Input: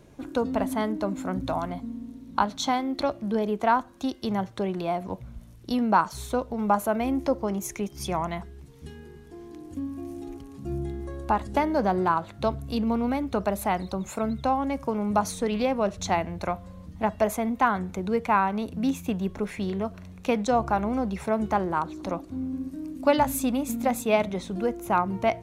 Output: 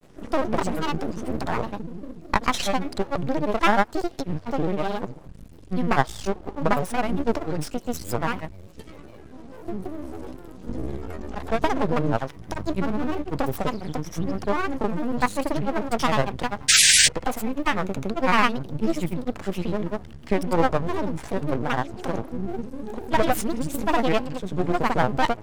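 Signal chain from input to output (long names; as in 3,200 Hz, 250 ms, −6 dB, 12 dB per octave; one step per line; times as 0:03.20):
half-wave rectification
sound drawn into the spectrogram noise, 0:16.75–0:17.02, 1,800–11,000 Hz −20 dBFS
granular cloud, pitch spread up and down by 7 semitones
level +6.5 dB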